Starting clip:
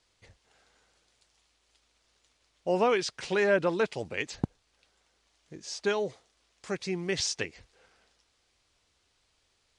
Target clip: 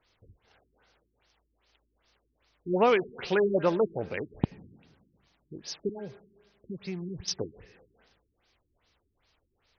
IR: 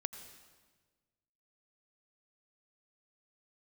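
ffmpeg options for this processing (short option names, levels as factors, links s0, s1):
-filter_complex "[0:a]asettb=1/sr,asplit=3[s0][s1][s2];[s0]atrim=end=5.894[s3];[s1]atrim=start=5.89:end=7.28,asetpts=PTS-STARTPTS,afade=t=in:d=0.004:c=qsin,afade=t=out:st=1.386:d=0.004:c=qsin,acrossover=split=190[s4][s5];[s5]acompressor=threshold=0.01:ratio=10[s6];[s4][s6]amix=inputs=2:normalize=0[s7];[s2]atrim=start=7.276[s8];[s3][s7]acrossfade=d=0.004:c1=hsin:c2=qsin[s9];[s9][s8]acrossfade=d=0.004:c1=qsin:c2=hsin,acrusher=bits=5:mode=log:mix=0:aa=0.000001,asplit=2[s10][s11];[1:a]atrim=start_sample=2205[s12];[s11][s12]afir=irnorm=-1:irlink=0,volume=0.398[s13];[s10][s13]amix=inputs=2:normalize=0,afftfilt=real='re*lt(b*sr/1024,380*pow(6600/380,0.5+0.5*sin(2*PI*2.5*pts/sr)))':imag='im*lt(b*sr/1024,380*pow(6600/380,0.5+0.5*sin(2*PI*2.5*pts/sr)))':win_size=1024:overlap=0.75"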